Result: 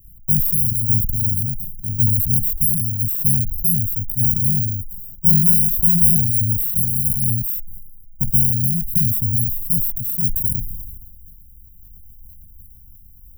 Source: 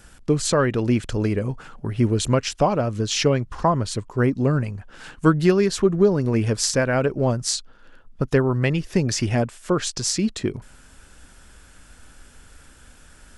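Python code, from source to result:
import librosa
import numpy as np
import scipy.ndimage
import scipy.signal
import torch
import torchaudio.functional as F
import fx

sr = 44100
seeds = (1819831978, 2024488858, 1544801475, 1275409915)

y = fx.bit_reversed(x, sr, seeds[0], block=128)
y = scipy.signal.sosfilt(scipy.signal.cheby2(4, 80, [910.0, 3600.0], 'bandstop', fs=sr, output='sos'), y)
y = fx.sustainer(y, sr, db_per_s=34.0)
y = F.gain(torch.from_numpy(y), 3.5).numpy()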